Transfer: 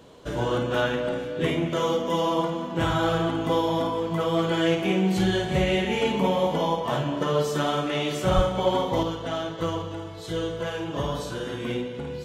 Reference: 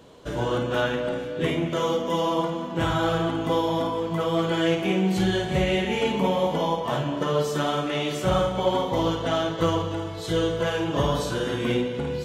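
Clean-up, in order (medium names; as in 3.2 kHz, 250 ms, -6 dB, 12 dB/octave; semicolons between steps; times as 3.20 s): de-plosive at 8.35 s; trim 0 dB, from 9.03 s +5 dB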